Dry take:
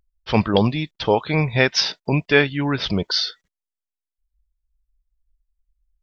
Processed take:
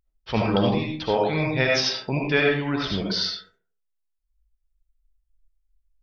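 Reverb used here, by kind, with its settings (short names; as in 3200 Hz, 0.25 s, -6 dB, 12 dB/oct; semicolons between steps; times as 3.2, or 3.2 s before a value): digital reverb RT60 0.5 s, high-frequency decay 0.45×, pre-delay 35 ms, DRR -1.5 dB; gain -6.5 dB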